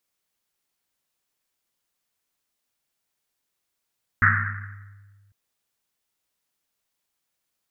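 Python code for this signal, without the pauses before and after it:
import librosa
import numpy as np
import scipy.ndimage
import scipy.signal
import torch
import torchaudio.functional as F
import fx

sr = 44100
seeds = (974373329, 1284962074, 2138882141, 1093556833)

y = fx.risset_drum(sr, seeds[0], length_s=1.1, hz=100.0, decay_s=1.86, noise_hz=1600.0, noise_width_hz=670.0, noise_pct=60)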